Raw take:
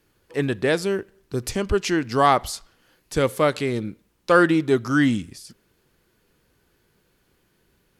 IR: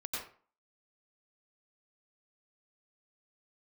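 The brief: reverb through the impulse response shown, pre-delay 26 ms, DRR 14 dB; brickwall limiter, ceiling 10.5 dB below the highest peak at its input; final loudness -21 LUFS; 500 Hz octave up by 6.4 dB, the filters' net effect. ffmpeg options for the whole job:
-filter_complex "[0:a]equalizer=f=500:t=o:g=8,alimiter=limit=0.299:level=0:latency=1,asplit=2[s0][s1];[1:a]atrim=start_sample=2205,adelay=26[s2];[s1][s2]afir=irnorm=-1:irlink=0,volume=0.158[s3];[s0][s3]amix=inputs=2:normalize=0,volume=1.06"

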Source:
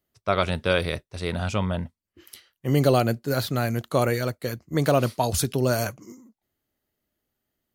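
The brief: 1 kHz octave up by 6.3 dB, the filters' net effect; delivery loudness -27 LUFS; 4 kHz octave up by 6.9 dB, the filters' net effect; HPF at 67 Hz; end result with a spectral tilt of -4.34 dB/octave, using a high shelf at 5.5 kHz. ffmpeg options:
-af "highpass=67,equalizer=f=1000:t=o:g=8.5,equalizer=f=4000:t=o:g=4.5,highshelf=f=5500:g=8.5,volume=0.562"

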